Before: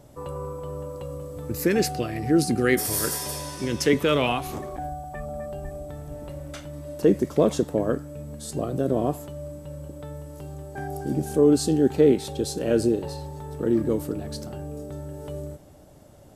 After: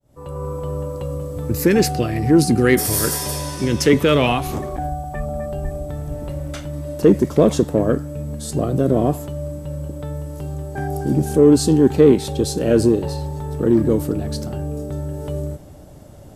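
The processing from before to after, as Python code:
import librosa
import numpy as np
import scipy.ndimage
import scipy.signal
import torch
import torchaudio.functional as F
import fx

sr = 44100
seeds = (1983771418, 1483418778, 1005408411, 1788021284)

p1 = fx.fade_in_head(x, sr, length_s=0.56)
p2 = fx.low_shelf(p1, sr, hz=210.0, db=6.0)
p3 = 10.0 ** (-18.0 / 20.0) * np.tanh(p2 / 10.0 ** (-18.0 / 20.0))
p4 = p2 + (p3 * 10.0 ** (-8.0 / 20.0))
y = p4 * 10.0 ** (3.0 / 20.0)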